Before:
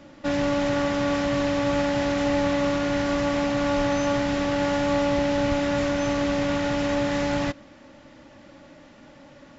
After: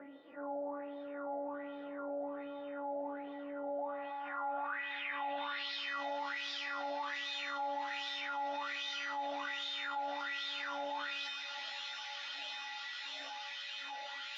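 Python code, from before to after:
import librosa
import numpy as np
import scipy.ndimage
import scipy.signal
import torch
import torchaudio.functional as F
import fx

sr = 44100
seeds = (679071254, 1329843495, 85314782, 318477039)

p1 = fx.low_shelf(x, sr, hz=260.0, db=-11.5)
p2 = fx.wah_lfo(p1, sr, hz=1.9, low_hz=670.0, high_hz=3700.0, q=10.0)
p3 = p2 + fx.echo_wet_highpass(p2, sr, ms=427, feedback_pct=84, hz=2300.0, wet_db=-8.5, dry=0)
p4 = fx.dynamic_eq(p3, sr, hz=1100.0, q=0.86, threshold_db=-52.0, ratio=4.0, max_db=4)
p5 = fx.comb_fb(p4, sr, f0_hz=280.0, decay_s=0.49, harmonics='odd', damping=0.0, mix_pct=90)
p6 = fx.filter_sweep_lowpass(p5, sr, from_hz=470.0, to_hz=5800.0, start_s=2.44, end_s=3.96, q=2.5)
p7 = fx.stretch_vocoder_free(p6, sr, factor=1.5)
p8 = fx.env_flatten(p7, sr, amount_pct=70)
y = F.gain(torch.from_numpy(p8), 10.0).numpy()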